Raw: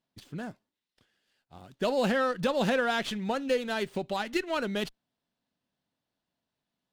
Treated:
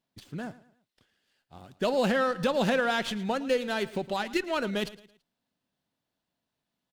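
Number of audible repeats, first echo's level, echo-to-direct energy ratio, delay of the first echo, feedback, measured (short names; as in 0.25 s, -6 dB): 3, -18.0 dB, -17.5 dB, 0.111 s, 38%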